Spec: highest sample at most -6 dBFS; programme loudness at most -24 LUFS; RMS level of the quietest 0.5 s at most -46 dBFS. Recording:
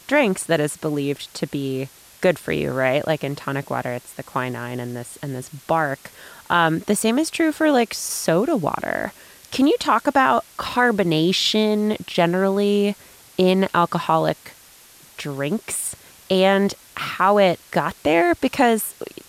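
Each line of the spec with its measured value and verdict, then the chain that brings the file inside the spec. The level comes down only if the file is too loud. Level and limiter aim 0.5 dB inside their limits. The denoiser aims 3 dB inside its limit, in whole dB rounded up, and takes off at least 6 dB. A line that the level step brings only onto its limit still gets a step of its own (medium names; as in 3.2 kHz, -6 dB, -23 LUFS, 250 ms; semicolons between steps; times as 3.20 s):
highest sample -5.5 dBFS: fail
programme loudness -20.5 LUFS: fail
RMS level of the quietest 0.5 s -48 dBFS: pass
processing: trim -4 dB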